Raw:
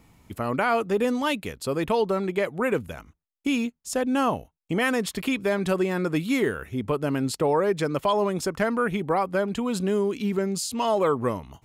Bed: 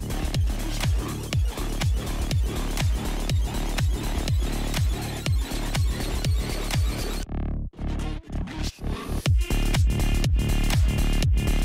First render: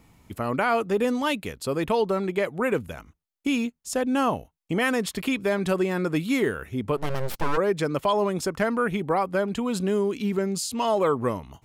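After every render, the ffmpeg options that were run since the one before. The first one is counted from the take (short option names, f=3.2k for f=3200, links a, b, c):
-filter_complex "[0:a]asplit=3[a][b][c];[a]afade=t=out:st=6.96:d=0.02[d];[b]aeval=exprs='abs(val(0))':c=same,afade=t=in:st=6.96:d=0.02,afade=t=out:st=7.56:d=0.02[e];[c]afade=t=in:st=7.56:d=0.02[f];[d][e][f]amix=inputs=3:normalize=0"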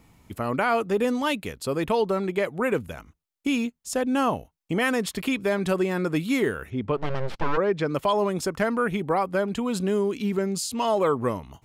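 -filter_complex "[0:a]asettb=1/sr,asplit=3[a][b][c];[a]atrim=end=6.704[d];[b]atrim=start=6.7:end=7.88,asetpts=PTS-STARTPTS,afade=t=in:d=0.004:c=qsin,afade=t=out:st=1.176:d=0.004:c=qsin,lowpass=4k[e];[c]atrim=start=7.876[f];[d][e]acrossfade=d=0.004:c1=hsin:c2=qsin[g];[g][f]acrossfade=d=0.004:c1=qsin:c2=hsin"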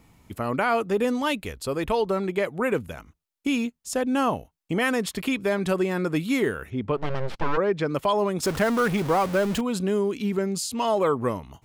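-filter_complex "[0:a]asplit=3[a][b][c];[a]afade=t=out:st=1.37:d=0.02[d];[b]asubboost=boost=8:cutoff=69,afade=t=in:st=1.37:d=0.02,afade=t=out:st=2.06:d=0.02[e];[c]afade=t=in:st=2.06:d=0.02[f];[d][e][f]amix=inputs=3:normalize=0,asettb=1/sr,asplit=3[g][h][i];[g]atrim=end=8.434[j];[h]atrim=start=8.43:end=9.61,asetpts=PTS-STARTPTS,afade=t=in:d=0.004:c=qsin,afade=t=out:st=1.176:d=0.004:c=qsin,aeval=exprs='val(0)+0.5*0.0422*sgn(val(0))':c=same[k];[i]atrim=start=9.606[l];[j][k]acrossfade=d=0.004:c1=hsin:c2=qsin[m];[m][l]acrossfade=d=0.004:c1=qsin:c2=hsin"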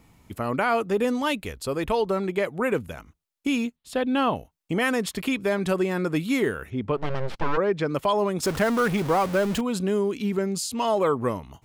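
-filter_complex "[0:a]asettb=1/sr,asplit=3[a][b][c];[a]atrim=end=3.764[d];[b]atrim=start=3.76:end=4.36,asetpts=PTS-STARTPTS,afade=t=in:d=0.004:c=qsin,afade=t=out:st=0.596:d=0.004:c=qsin,highshelf=f=4.8k:t=q:w=3:g=-8[e];[c]atrim=start=4.356[f];[d][e]acrossfade=d=0.004:c1=hsin:c2=qsin[g];[g][f]acrossfade=d=0.004:c1=qsin:c2=hsin"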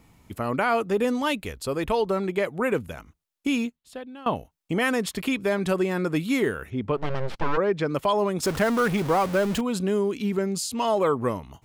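-filter_complex "[0:a]asplit=2[a][b];[a]atrim=end=4.26,asetpts=PTS-STARTPTS,afade=t=out:st=3.62:d=0.64:c=qua:silence=0.0944061[c];[b]atrim=start=4.26,asetpts=PTS-STARTPTS,afade=t=in:d=0.004:c=hsin:silence=0.0944061[d];[c][d]concat=n=2:v=0:a=1"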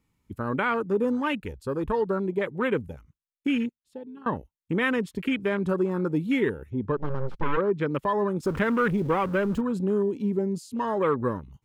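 -af "afwtdn=0.0251,equalizer=f=690:t=o:w=0.36:g=-12"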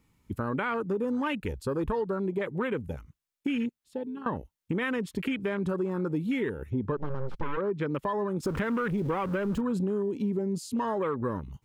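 -filter_complex "[0:a]acompressor=threshold=-30dB:ratio=6,asplit=2[a][b];[b]alimiter=level_in=6dB:limit=-24dB:level=0:latency=1:release=31,volume=-6dB,volume=-1.5dB[c];[a][c]amix=inputs=2:normalize=0"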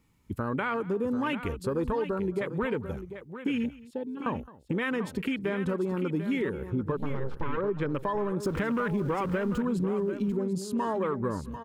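-af "aecho=1:1:215|743:0.1|0.282"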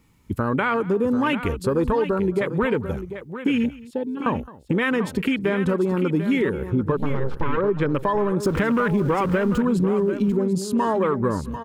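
-af "volume=8dB"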